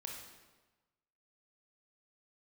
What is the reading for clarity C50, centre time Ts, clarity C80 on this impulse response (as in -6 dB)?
2.5 dB, 53 ms, 5.0 dB